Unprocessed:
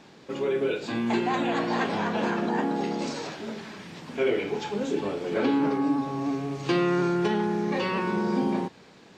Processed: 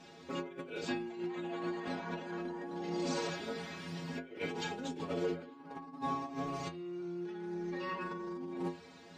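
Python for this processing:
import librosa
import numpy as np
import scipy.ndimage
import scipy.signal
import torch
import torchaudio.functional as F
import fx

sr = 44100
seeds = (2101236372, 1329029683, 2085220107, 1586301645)

y = fx.over_compress(x, sr, threshold_db=-31.0, ratio=-0.5)
y = fx.stiff_resonator(y, sr, f0_hz=83.0, decay_s=0.35, stiffness=0.008)
y = y * librosa.db_to_amplitude(1.5)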